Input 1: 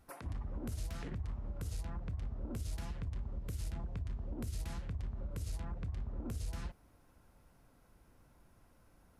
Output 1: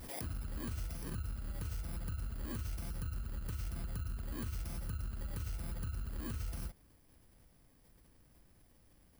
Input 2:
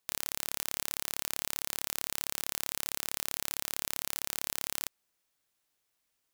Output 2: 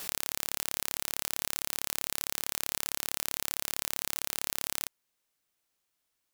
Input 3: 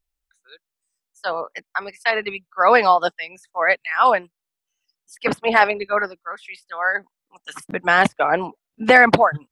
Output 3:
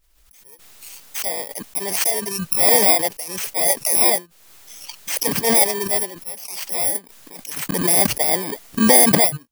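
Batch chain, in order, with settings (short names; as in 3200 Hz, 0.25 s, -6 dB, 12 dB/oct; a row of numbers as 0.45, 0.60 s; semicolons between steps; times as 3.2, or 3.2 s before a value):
FFT order left unsorted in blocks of 32 samples; backwards sustainer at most 38 dB/s; gain -1 dB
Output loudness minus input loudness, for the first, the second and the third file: +0.5, +1.5, +2.0 LU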